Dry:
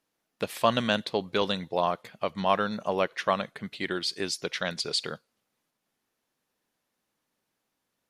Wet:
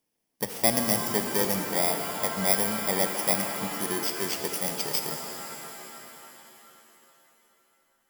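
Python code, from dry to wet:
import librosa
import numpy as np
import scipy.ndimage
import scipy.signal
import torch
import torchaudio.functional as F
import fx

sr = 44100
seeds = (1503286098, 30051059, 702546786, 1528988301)

y = fx.bit_reversed(x, sr, seeds[0], block=32)
y = fx.rev_shimmer(y, sr, seeds[1], rt60_s=3.3, semitones=7, shimmer_db=-2, drr_db=5.5)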